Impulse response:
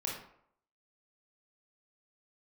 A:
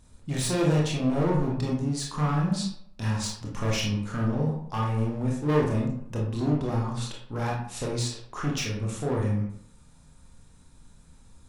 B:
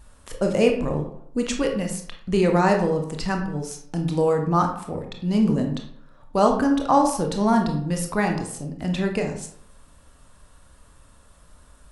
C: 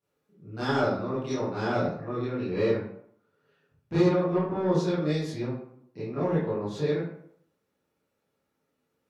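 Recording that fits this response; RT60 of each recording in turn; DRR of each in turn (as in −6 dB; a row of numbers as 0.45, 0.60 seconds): A; 0.70, 0.70, 0.70 seconds; −3.0, 3.0, −12.5 decibels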